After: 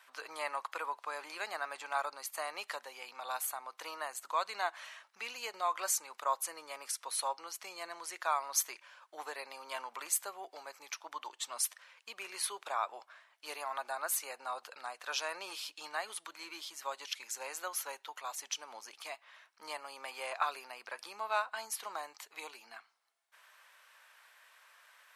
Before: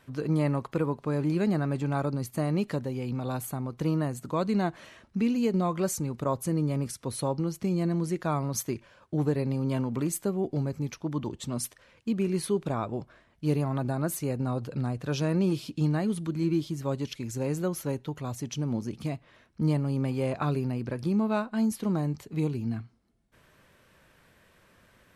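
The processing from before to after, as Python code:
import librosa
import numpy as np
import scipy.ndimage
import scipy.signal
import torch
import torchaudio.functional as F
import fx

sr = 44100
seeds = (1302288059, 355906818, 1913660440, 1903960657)

y = scipy.signal.sosfilt(scipy.signal.butter(4, 820.0, 'highpass', fs=sr, output='sos'), x)
y = y * librosa.db_to_amplitude(2.0)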